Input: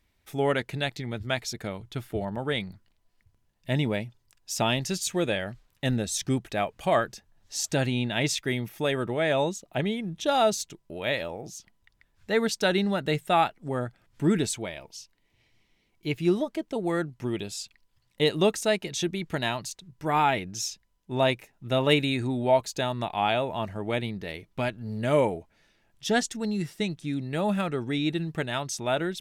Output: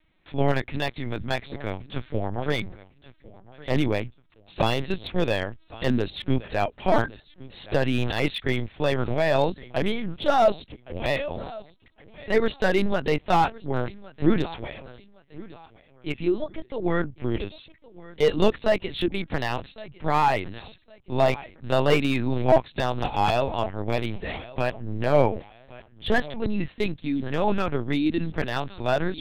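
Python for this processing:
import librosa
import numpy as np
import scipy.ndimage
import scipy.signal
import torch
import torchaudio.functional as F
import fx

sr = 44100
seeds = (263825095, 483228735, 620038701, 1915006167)

y = fx.comb_fb(x, sr, f0_hz=380.0, decay_s=0.35, harmonics='odd', damping=0.0, mix_pct=40, at=(14.4, 16.81), fade=0.02)
y = fx.echo_feedback(y, sr, ms=1112, feedback_pct=30, wet_db=-20)
y = fx.lpc_vocoder(y, sr, seeds[0], excitation='pitch_kept', order=8)
y = fx.slew_limit(y, sr, full_power_hz=110.0)
y = F.gain(torch.from_numpy(y), 4.0).numpy()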